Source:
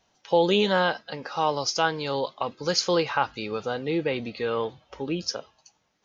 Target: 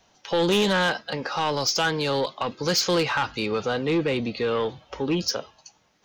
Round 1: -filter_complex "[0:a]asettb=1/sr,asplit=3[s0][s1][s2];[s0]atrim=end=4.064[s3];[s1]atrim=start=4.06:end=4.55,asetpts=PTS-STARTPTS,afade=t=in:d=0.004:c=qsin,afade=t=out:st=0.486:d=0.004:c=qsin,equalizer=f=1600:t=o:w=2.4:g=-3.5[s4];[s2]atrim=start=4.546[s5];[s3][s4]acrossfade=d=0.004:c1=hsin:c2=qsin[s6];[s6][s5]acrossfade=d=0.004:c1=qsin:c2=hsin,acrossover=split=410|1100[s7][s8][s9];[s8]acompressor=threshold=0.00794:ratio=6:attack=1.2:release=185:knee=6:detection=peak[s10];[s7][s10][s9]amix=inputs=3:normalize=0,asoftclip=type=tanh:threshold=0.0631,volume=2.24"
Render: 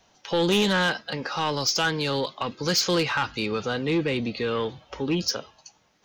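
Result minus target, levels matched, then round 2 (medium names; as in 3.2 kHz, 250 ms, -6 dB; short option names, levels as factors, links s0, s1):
compression: peak gain reduction +9 dB
-filter_complex "[0:a]asettb=1/sr,asplit=3[s0][s1][s2];[s0]atrim=end=4.064[s3];[s1]atrim=start=4.06:end=4.55,asetpts=PTS-STARTPTS,afade=t=in:d=0.004:c=qsin,afade=t=out:st=0.486:d=0.004:c=qsin,equalizer=f=1600:t=o:w=2.4:g=-3.5[s4];[s2]atrim=start=4.546[s5];[s3][s4]acrossfade=d=0.004:c1=hsin:c2=qsin[s6];[s6][s5]acrossfade=d=0.004:c1=qsin:c2=hsin,acrossover=split=410|1100[s7][s8][s9];[s8]acompressor=threshold=0.0282:ratio=6:attack=1.2:release=185:knee=6:detection=peak[s10];[s7][s10][s9]amix=inputs=3:normalize=0,asoftclip=type=tanh:threshold=0.0631,volume=2.24"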